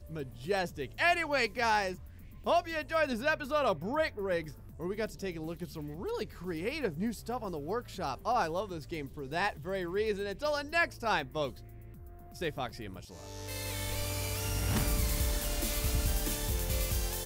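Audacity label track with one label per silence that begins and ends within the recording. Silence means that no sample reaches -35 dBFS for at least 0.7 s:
11.490000	12.410000	silence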